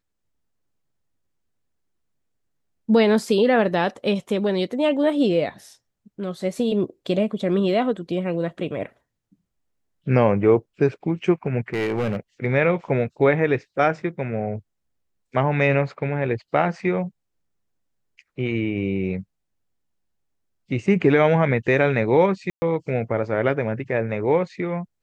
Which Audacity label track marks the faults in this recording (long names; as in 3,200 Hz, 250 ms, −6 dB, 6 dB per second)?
11.730000	12.160000	clipping −19.5 dBFS
22.500000	22.620000	drop-out 120 ms